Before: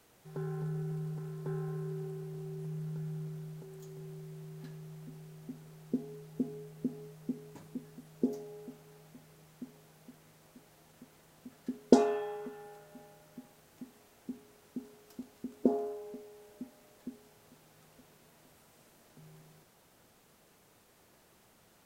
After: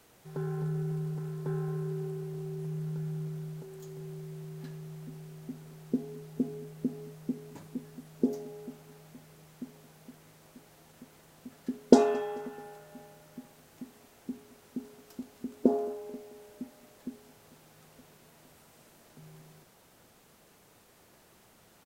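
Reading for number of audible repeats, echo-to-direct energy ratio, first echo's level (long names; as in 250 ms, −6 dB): 2, −22.0 dB, −23.0 dB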